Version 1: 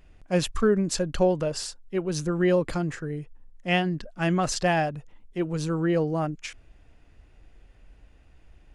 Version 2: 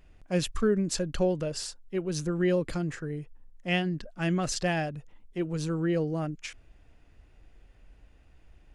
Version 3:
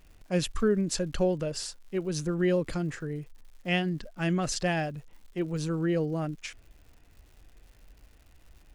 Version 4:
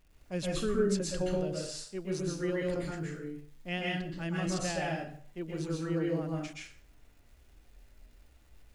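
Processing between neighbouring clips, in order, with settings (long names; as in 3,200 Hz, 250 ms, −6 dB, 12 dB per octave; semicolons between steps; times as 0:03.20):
dynamic equaliser 920 Hz, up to −7 dB, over −39 dBFS, Q 1.2; level −2.5 dB
surface crackle 220 per second −49 dBFS
dense smooth reverb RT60 0.51 s, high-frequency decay 0.8×, pre-delay 110 ms, DRR −3.5 dB; level −8.5 dB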